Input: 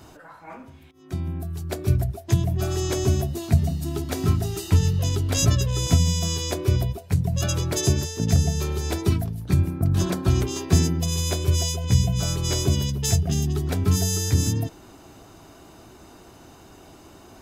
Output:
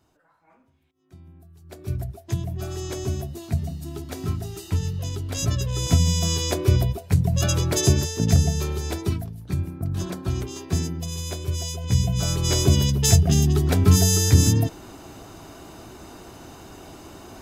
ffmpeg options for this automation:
-af "volume=4.73,afade=t=in:st=1.61:d=0.4:silence=0.237137,afade=t=in:st=5.38:d=0.95:silence=0.375837,afade=t=out:st=8.17:d=1.14:silence=0.375837,afade=t=in:st=11.6:d=1.37:silence=0.281838"

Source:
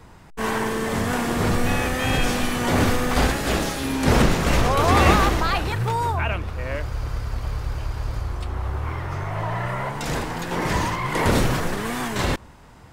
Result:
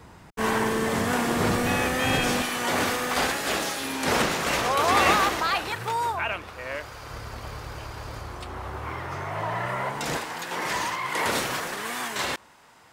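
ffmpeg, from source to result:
-af "asetnsamples=n=441:p=0,asendcmd='0.9 highpass f 170;2.42 highpass f 670;7.1 highpass f 280;10.17 highpass f 970',highpass=f=67:p=1"

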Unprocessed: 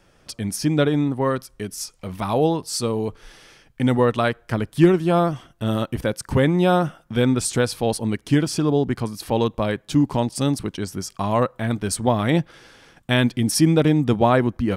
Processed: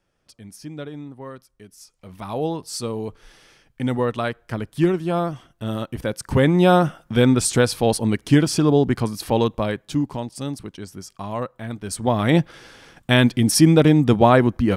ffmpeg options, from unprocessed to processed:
-af "volume=4.73,afade=t=in:st=1.82:d=0.8:silence=0.281838,afade=t=in:st=5.93:d=0.73:silence=0.446684,afade=t=out:st=9.13:d=1.08:silence=0.298538,afade=t=in:st=11.82:d=0.56:silence=0.298538"

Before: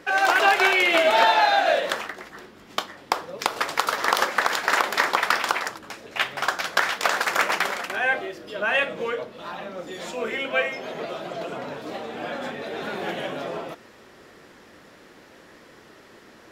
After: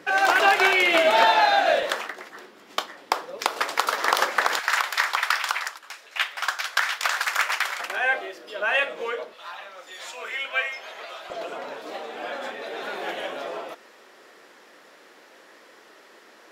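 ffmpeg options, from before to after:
-af "asetnsamples=n=441:p=0,asendcmd='1.83 highpass f 310;4.59 highpass f 1100;7.8 highpass f 450;9.34 highpass f 1000;11.3 highpass f 420',highpass=110"

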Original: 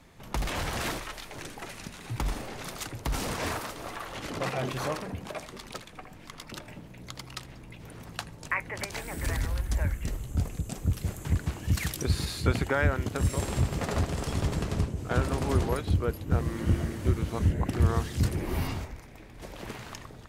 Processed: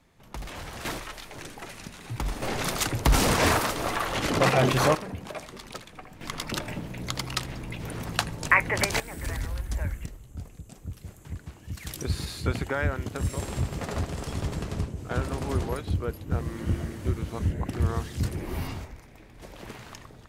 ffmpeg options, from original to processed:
-af "asetnsamples=n=441:p=0,asendcmd='0.85 volume volume 0dB;2.42 volume volume 10dB;4.95 volume volume 0.5dB;6.21 volume volume 10dB;9 volume volume -2dB;10.06 volume volume -10.5dB;11.87 volume volume -2dB',volume=0.447"

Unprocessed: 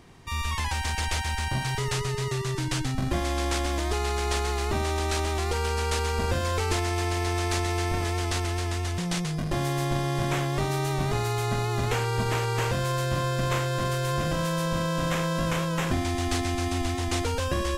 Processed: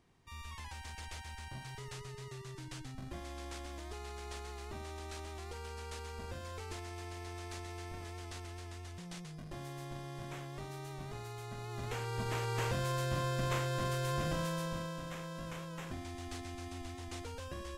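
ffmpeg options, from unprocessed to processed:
-af "volume=0.398,afade=t=in:st=11.55:d=1.14:silence=0.316228,afade=t=out:st=14.33:d=0.71:silence=0.354813"

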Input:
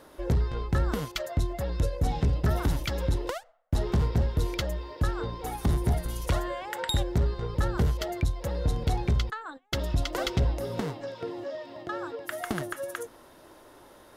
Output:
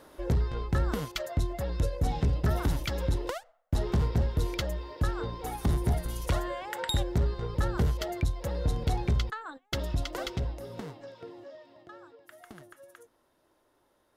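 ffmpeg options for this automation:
-af "volume=0.841,afade=t=out:st=9.65:d=0.91:silence=0.446684,afade=t=out:st=11.09:d=1.07:silence=0.354813"

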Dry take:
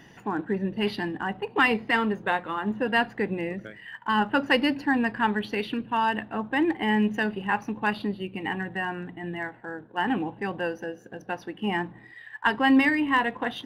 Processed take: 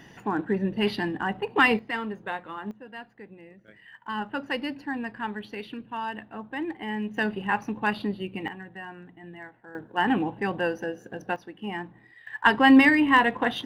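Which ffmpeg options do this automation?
-af "asetnsamples=n=441:p=0,asendcmd='1.79 volume volume -7dB;2.71 volume volume -18dB;3.68 volume volume -8dB;7.17 volume volume 0dB;8.48 volume volume -10dB;9.75 volume volume 2.5dB;11.36 volume volume -6dB;12.27 volume volume 4dB',volume=1.19"

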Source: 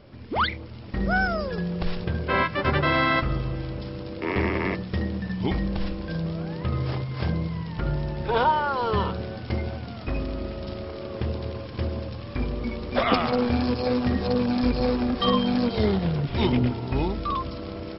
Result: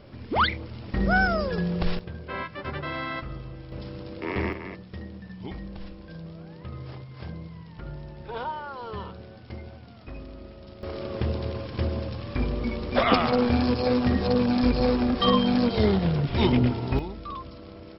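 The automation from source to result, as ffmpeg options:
-af "asetnsamples=n=441:p=0,asendcmd='1.99 volume volume -10.5dB;3.72 volume volume -3.5dB;4.53 volume volume -11.5dB;10.83 volume volume 1dB;16.99 volume volume -9dB',volume=1.19"

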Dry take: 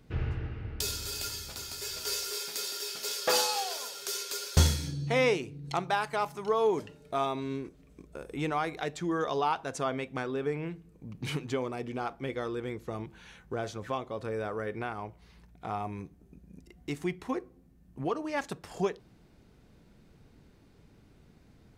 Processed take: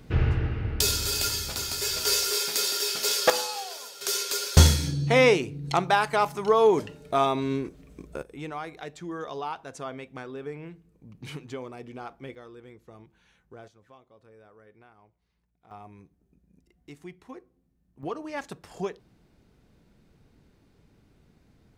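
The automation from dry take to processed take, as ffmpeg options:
-af "asetnsamples=n=441:p=0,asendcmd='3.3 volume volume -2.5dB;4.01 volume volume 7dB;8.22 volume volume -5dB;12.35 volume volume -12dB;13.68 volume volume -20dB;15.71 volume volume -10.5dB;18.03 volume volume -2dB',volume=2.82"

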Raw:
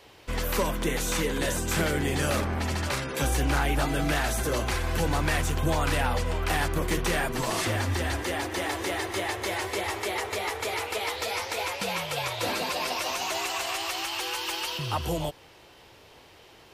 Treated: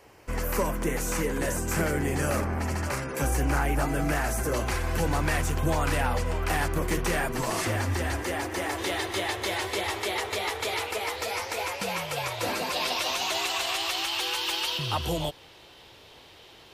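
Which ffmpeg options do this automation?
-af "asetnsamples=n=441:p=0,asendcmd='4.54 equalizer g -5.5;8.78 equalizer g 4.5;10.91 equalizer g -3.5;12.73 equalizer g 6.5',equalizer=f=3600:t=o:w=0.62:g=-13.5"

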